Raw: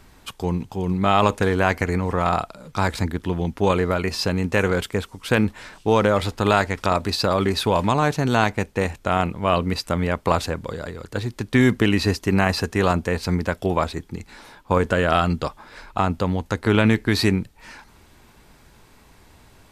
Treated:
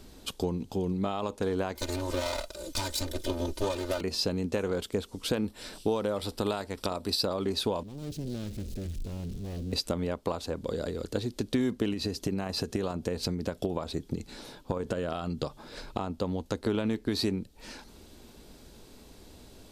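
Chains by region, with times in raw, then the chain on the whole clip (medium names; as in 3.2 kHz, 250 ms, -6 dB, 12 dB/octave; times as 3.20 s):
1.75–4.01 s: comb filter that takes the minimum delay 2 ms + treble shelf 2.9 kHz +10.5 dB + comb 3.3 ms, depth 84%
5.44–7.25 s: treble shelf 5.5 kHz +8.5 dB + band-stop 6.6 kHz, Q 6
7.83–9.73 s: jump at every zero crossing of -20.5 dBFS + amplifier tone stack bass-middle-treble 10-0-1 + loudspeaker Doppler distortion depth 0.77 ms
11.93–16.01 s: peaking EQ 140 Hz +9 dB 0.35 oct + compression 2.5:1, threshold -23 dBFS + transient shaper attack +4 dB, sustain 0 dB
whole clip: dynamic bell 1 kHz, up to +7 dB, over -35 dBFS, Q 1.7; compression 5:1, threshold -28 dBFS; graphic EQ 125/250/500/1000/2000/4000 Hz -5/+4/+4/-7/-8/+4 dB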